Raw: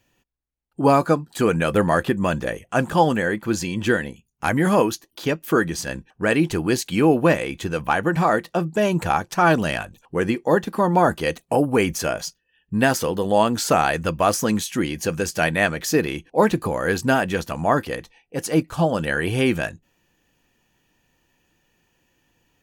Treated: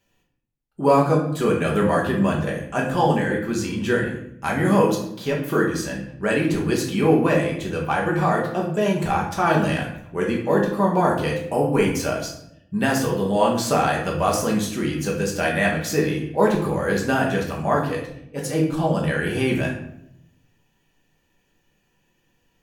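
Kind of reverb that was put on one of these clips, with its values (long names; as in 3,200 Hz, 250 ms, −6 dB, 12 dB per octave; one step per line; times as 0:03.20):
rectangular room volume 160 cubic metres, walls mixed, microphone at 1.2 metres
level −5.5 dB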